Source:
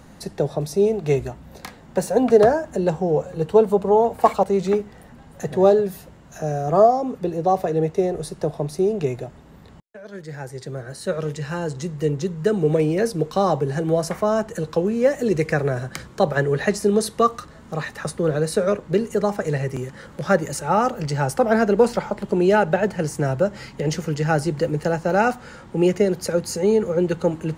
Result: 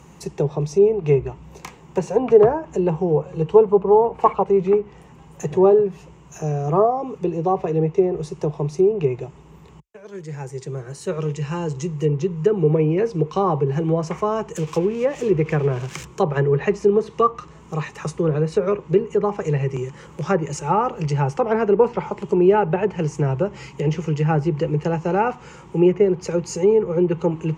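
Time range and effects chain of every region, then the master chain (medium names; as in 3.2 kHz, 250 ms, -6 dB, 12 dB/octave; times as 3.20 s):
14.56–16.05 s: zero-crossing glitches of -19.5 dBFS + treble shelf 5.4 kHz -9 dB
whole clip: rippled EQ curve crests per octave 0.73, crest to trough 10 dB; low-pass that closes with the level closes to 1.9 kHz, closed at -13 dBFS; high-pass 53 Hz; trim -1 dB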